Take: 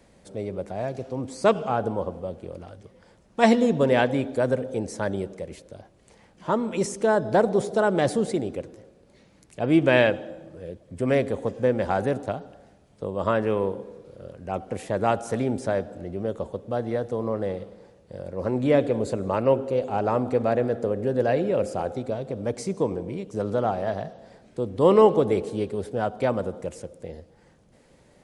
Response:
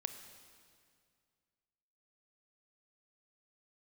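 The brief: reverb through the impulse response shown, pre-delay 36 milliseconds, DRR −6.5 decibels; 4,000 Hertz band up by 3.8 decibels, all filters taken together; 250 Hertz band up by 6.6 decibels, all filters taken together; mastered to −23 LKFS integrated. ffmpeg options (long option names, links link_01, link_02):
-filter_complex "[0:a]equalizer=frequency=250:width_type=o:gain=8,equalizer=frequency=4000:width_type=o:gain=5,asplit=2[link_01][link_02];[1:a]atrim=start_sample=2205,adelay=36[link_03];[link_02][link_03]afir=irnorm=-1:irlink=0,volume=7.5dB[link_04];[link_01][link_04]amix=inputs=2:normalize=0,volume=-9dB"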